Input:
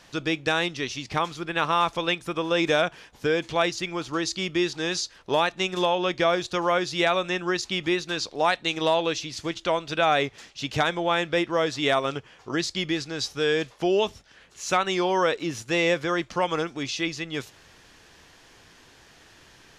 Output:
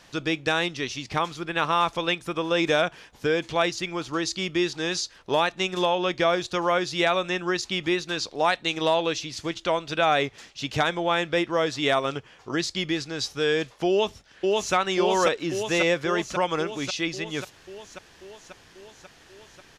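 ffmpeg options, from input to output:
-filter_complex "[0:a]asplit=2[a][b];[b]afade=t=in:st=13.89:d=0.01,afade=t=out:st=14.74:d=0.01,aecho=0:1:540|1080|1620|2160|2700|3240|3780|4320|4860|5400|5940|6480:0.891251|0.623876|0.436713|0.305699|0.213989|0.149793|0.104855|0.0733983|0.0513788|0.0359652|0.0251756|0.0176229[c];[a][c]amix=inputs=2:normalize=0"

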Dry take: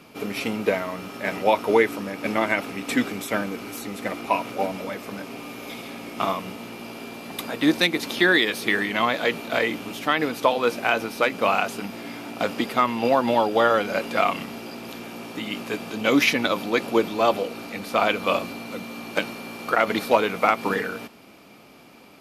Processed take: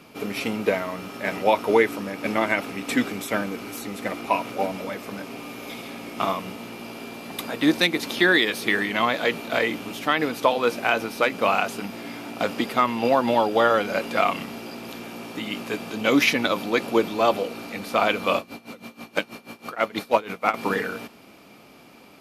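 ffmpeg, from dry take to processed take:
-filter_complex "[0:a]asettb=1/sr,asplit=3[a][b][c];[a]atrim=end=18.384[d];[b]atrim=start=18.38:end=20.54,asetpts=PTS-STARTPTS,afade=t=in:d=0.004:c=qsin,afade=t=out:st=2.156:d=0.004:c=qsin,aeval=exprs='val(0)*pow(10,-19*(0.5-0.5*cos(2*PI*6.2*n/s))/20)':c=same[e];[c]atrim=start=20.536[f];[d][e]acrossfade=d=0.004:c1=hsin:c2=qsin[g];[g][f]acrossfade=d=0.004:c1=qsin:c2=hsin"

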